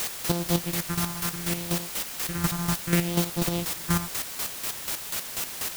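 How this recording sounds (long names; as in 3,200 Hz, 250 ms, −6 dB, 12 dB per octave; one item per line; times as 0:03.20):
a buzz of ramps at a fixed pitch in blocks of 256 samples
phaser sweep stages 4, 0.67 Hz, lowest notch 470–2,100 Hz
a quantiser's noise floor 6 bits, dither triangular
chopped level 4.1 Hz, depth 60%, duty 30%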